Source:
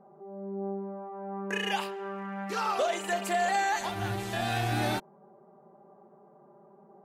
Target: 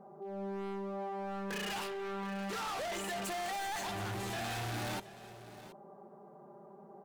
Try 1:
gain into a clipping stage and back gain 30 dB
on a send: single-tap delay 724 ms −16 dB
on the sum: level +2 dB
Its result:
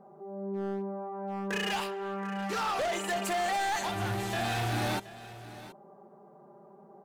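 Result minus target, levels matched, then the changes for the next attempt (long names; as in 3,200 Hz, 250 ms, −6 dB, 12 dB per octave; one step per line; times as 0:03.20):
gain into a clipping stage and back: distortion −6 dB
change: gain into a clipping stage and back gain 39 dB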